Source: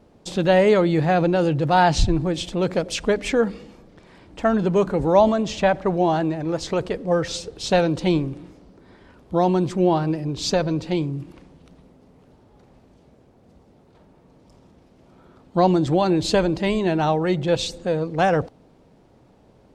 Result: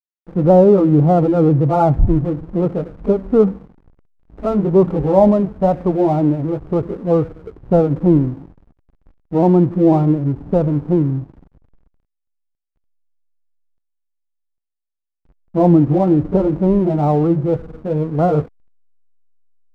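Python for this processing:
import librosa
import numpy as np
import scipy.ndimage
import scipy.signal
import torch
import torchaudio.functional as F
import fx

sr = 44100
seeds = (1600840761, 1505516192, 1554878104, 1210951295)

y = fx.pitch_ramps(x, sr, semitones=-1.5, every_ms=496)
y = scipy.signal.sosfilt(scipy.signal.cheby1(8, 1.0, 1400.0, 'lowpass', fs=sr, output='sos'), y)
y = fx.tilt_shelf(y, sr, db=5.0, hz=900.0)
y = fx.hpss(y, sr, part='harmonic', gain_db=5)
y = fx.backlash(y, sr, play_db=-31.0)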